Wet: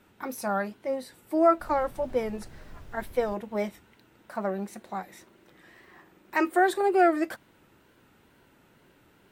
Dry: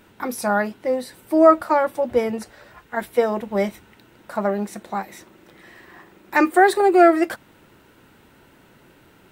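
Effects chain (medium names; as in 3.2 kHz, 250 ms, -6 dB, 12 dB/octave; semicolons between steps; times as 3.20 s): wow and flutter 80 cents; 1.59–3.34 s: added noise brown -35 dBFS; trim -8 dB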